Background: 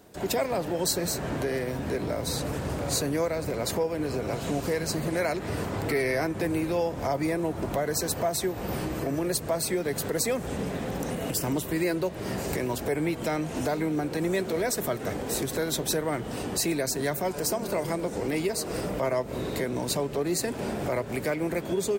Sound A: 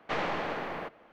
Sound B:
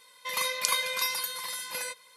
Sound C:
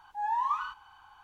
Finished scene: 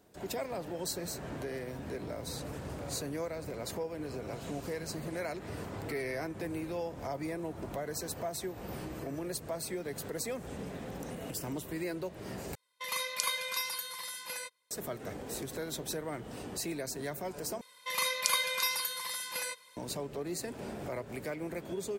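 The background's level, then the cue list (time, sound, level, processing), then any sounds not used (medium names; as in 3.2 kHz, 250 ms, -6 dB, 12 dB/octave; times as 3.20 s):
background -10 dB
12.55 s: replace with B -5.5 dB + gate -43 dBFS, range -16 dB
17.61 s: replace with B -2 dB
not used: A, C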